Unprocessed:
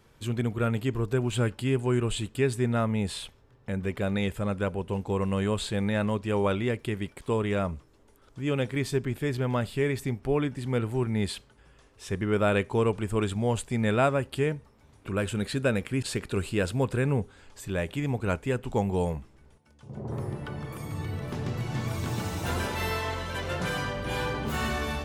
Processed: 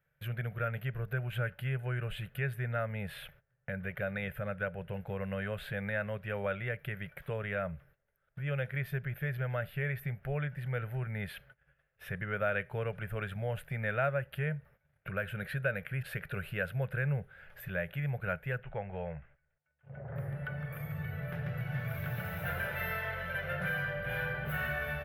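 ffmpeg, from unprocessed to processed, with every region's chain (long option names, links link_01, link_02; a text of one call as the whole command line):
ffmpeg -i in.wav -filter_complex "[0:a]asettb=1/sr,asplit=3[link_01][link_02][link_03];[link_01]atrim=end=18.634[link_04];[link_02]atrim=start=18.63:end=20.16,asetpts=PTS-STARTPTS,afade=type=in:duration=0.004:curve=qsin,afade=type=out:start_time=1.526:duration=0.004:curve=qsin,lowpass=frequency=2900:width=0.5412,lowpass=frequency=2900:width=1.3066,equalizer=frequency=190:width_type=o:width=2.2:gain=-8[link_05];[link_03]atrim=start=20.156[link_06];[link_04][link_05]acrossfade=duration=0.004:curve1=hsin:curve2=qsin[link_07];[link_07][link_06]acrossfade=duration=0.004:curve1=qsin:curve2=hsin,agate=range=-18dB:threshold=-53dB:ratio=16:detection=peak,firequalizer=gain_entry='entry(100,0);entry(150,10);entry(260,-18);entry(570,8);entry(1000,-7);entry(1500,13);entry(4400,-12);entry(7700,-21);entry(12000,10)':delay=0.05:min_phase=1,acompressor=threshold=-36dB:ratio=1.5,volume=-5dB" out.wav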